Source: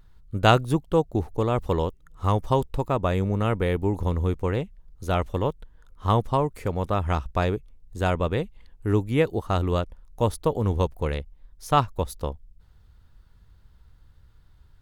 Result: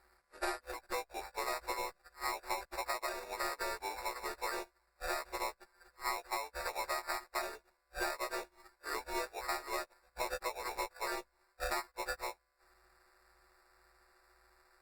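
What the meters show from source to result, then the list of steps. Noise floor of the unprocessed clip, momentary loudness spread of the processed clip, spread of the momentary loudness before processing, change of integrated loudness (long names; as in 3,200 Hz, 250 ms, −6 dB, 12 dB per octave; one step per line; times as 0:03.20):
−55 dBFS, 6 LU, 11 LU, −14.0 dB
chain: every partial snapped to a pitch grid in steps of 2 semitones
high-pass filter 670 Hz 24 dB per octave
downward compressor 12 to 1, threshold −33 dBFS, peak gain reduction 20.5 dB
decimation without filtering 14×
level −1 dB
Opus 32 kbit/s 48,000 Hz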